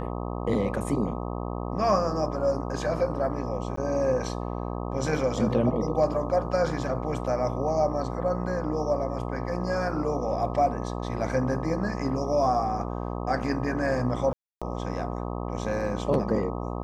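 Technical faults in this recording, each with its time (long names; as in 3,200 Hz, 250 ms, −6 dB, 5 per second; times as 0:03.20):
mains buzz 60 Hz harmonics 21 −32 dBFS
0:03.76–0:03.77: drop-out 14 ms
0:14.33–0:14.62: drop-out 286 ms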